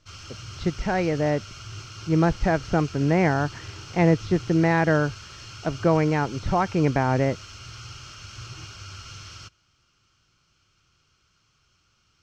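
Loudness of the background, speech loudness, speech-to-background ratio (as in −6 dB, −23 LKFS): −40.0 LKFS, −23.5 LKFS, 16.5 dB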